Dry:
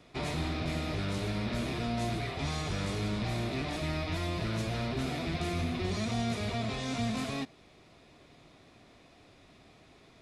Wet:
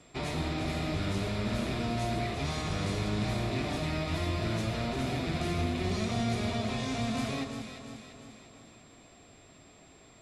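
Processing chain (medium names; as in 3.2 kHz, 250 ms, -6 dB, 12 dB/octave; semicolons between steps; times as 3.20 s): whistle 7.5 kHz -63 dBFS; echo whose repeats swap between lows and highs 173 ms, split 1.4 kHz, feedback 72%, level -5 dB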